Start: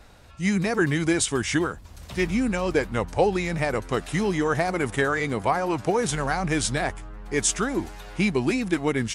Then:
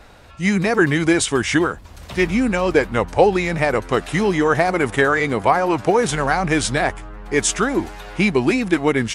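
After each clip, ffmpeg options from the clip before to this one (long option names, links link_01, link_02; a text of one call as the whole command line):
ffmpeg -i in.wav -af "bass=frequency=250:gain=-4,treble=frequency=4000:gain=-5,volume=7.5dB" out.wav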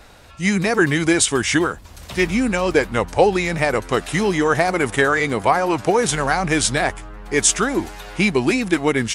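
ffmpeg -i in.wav -af "highshelf=frequency=3900:gain=7,volume=-1dB" out.wav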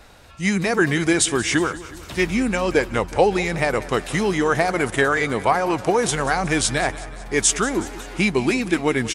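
ffmpeg -i in.wav -af "aecho=1:1:184|368|552|736|920:0.141|0.0819|0.0475|0.0276|0.016,volume=-2dB" out.wav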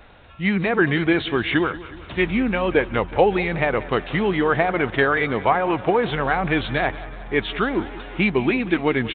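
ffmpeg -i in.wav -af "aresample=8000,aresample=44100" out.wav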